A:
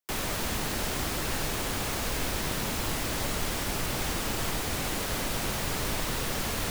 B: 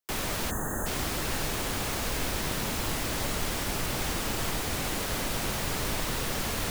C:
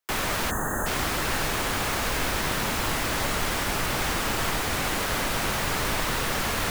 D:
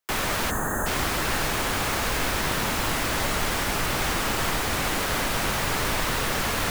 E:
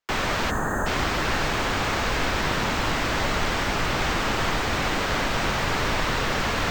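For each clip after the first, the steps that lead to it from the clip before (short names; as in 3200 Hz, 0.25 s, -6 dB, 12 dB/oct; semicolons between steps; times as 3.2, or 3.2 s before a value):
spectral gain 0.51–0.86, 1900–6200 Hz -27 dB
bell 1400 Hz +6 dB 2.2 oct; gain +2 dB
reverb RT60 2.7 s, pre-delay 52 ms, DRR 16 dB; gain +1 dB
running mean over 4 samples; gain +2 dB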